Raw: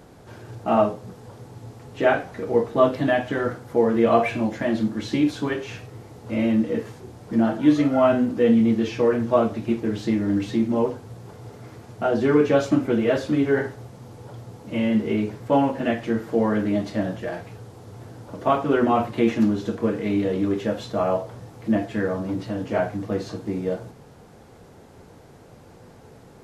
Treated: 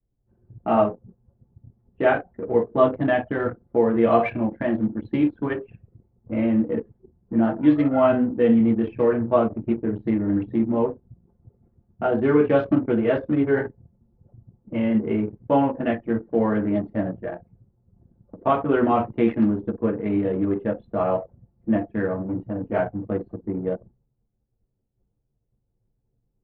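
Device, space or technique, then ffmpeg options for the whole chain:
hearing-loss simulation: -filter_complex "[0:a]asettb=1/sr,asplit=3[a][b][c];[a]atrim=end=5.354[d];[b]atrim=start=5.35:end=6.56,asetpts=PTS-STARTPTS,afade=t=in:d=0.004:c=qsin,afade=t=out:st=1.206:d=0.004:c=qsin,lowpass=4.5k[e];[c]atrim=start=6.556[f];[d][e]acrossfade=d=0.004:c1=hsin:c2=qsin[g];[g][f]acrossfade=d=0.004:c1=qsin:c2=hsin,lowpass=2.9k,agate=range=-33dB:threshold=-40dB:ratio=3:detection=peak,anlmdn=100"

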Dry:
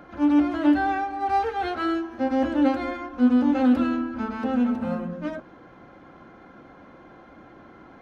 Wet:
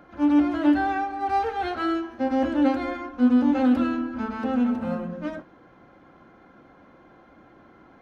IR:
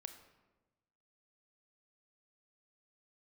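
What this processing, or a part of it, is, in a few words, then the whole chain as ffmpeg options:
keyed gated reverb: -filter_complex "[0:a]asplit=3[a][b][c];[1:a]atrim=start_sample=2205[d];[b][d]afir=irnorm=-1:irlink=0[e];[c]apad=whole_len=353348[f];[e][f]sidechaingate=range=-33dB:threshold=-36dB:ratio=16:detection=peak,volume=1dB[g];[a][g]amix=inputs=2:normalize=0,volume=-4.5dB"

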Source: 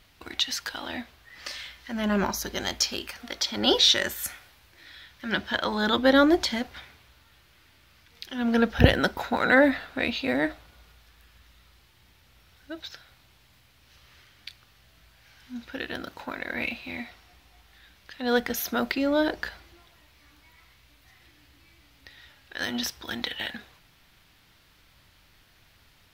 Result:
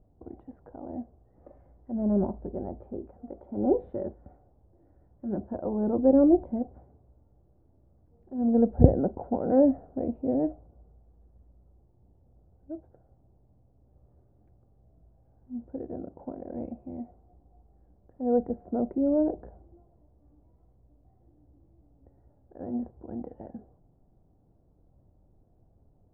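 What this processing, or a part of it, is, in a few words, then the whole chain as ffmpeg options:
under water: -af "lowpass=f=570:w=0.5412,lowpass=f=570:w=1.3066,lowpass=2.8k,equalizer=f=750:t=o:w=0.34:g=6,volume=1dB"

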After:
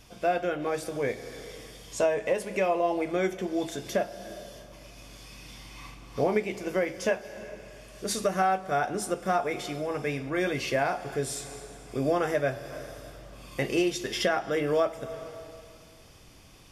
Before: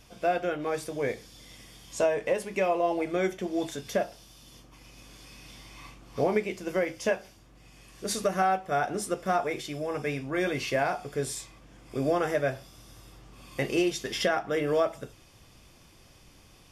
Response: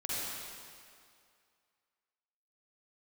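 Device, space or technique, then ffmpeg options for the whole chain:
ducked reverb: -filter_complex "[0:a]asplit=3[a][b][c];[1:a]atrim=start_sample=2205[d];[b][d]afir=irnorm=-1:irlink=0[e];[c]apad=whole_len=736992[f];[e][f]sidechaincompress=threshold=-38dB:ratio=8:attack=16:release=250,volume=-10.5dB[g];[a][g]amix=inputs=2:normalize=0"

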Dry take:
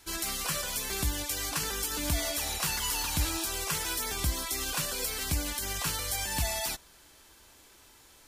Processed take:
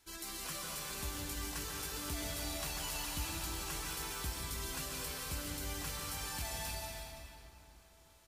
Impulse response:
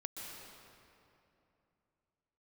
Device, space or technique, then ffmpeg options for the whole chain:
cave: -filter_complex "[0:a]aecho=1:1:325:0.282[a];[1:a]atrim=start_sample=2205[b];[a][b]afir=irnorm=-1:irlink=0,volume=-7.5dB"

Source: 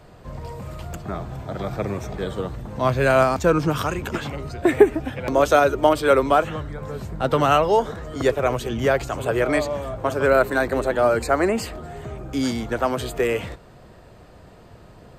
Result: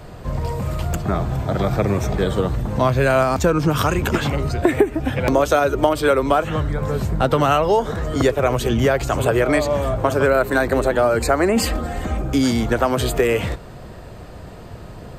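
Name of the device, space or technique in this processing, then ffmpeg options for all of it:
ASMR close-microphone chain: -filter_complex "[0:a]lowshelf=f=160:g=4,acompressor=threshold=-22dB:ratio=4,highshelf=f=9.8k:g=3.5,asettb=1/sr,asplit=3[a][b][c];[a]atrim=end=11.564[d];[b]atrim=start=11.56:end=12.22,asetpts=PTS-STARTPTS,afade=t=in:d=0.004:c=qsin,afade=t=out:st=0.656:d=0.004:c=qsin,aecho=1:1:3.8:0.86,atrim=end_sample=29106[e];[c]atrim=start=12.216[f];[d][e]acrossfade=d=0.004:c1=hsin:c2=qsin[g];[g][f]acrossfade=d=0.004:c1=qsin:c2=hsin,volume=8dB"

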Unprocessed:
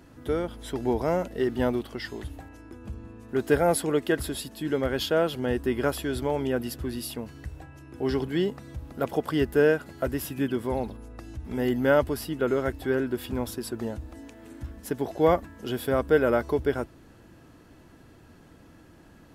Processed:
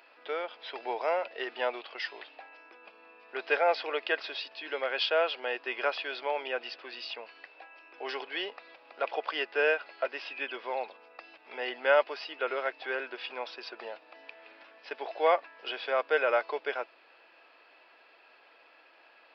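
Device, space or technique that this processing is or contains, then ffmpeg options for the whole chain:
musical greeting card: -af "aresample=11025,aresample=44100,highpass=f=560:w=0.5412,highpass=f=560:w=1.3066,equalizer=f=2.5k:t=o:w=0.32:g=11.5"

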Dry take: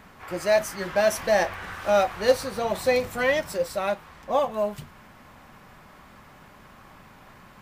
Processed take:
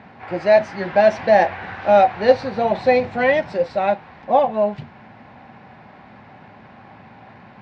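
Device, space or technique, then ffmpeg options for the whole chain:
guitar cabinet: -af "highpass=100,equalizer=f=110:t=q:w=4:g=6,equalizer=f=230:t=q:w=4:g=4,equalizer=f=770:t=q:w=4:g=7,equalizer=f=1.2k:t=q:w=4:g=-8,equalizer=f=3.2k:t=q:w=4:g=-6,lowpass=f=3.8k:w=0.5412,lowpass=f=3.8k:w=1.3066,volume=5.5dB"

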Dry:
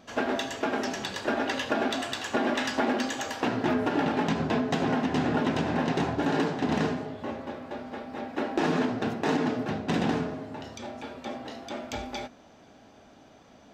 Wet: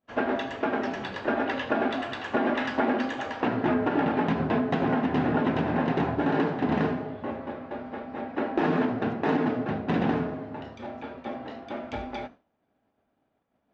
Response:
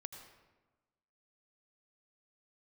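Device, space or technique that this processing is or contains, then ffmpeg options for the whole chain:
hearing-loss simulation: -af "lowpass=2.4k,agate=range=-33dB:threshold=-40dB:ratio=3:detection=peak,volume=1.5dB"

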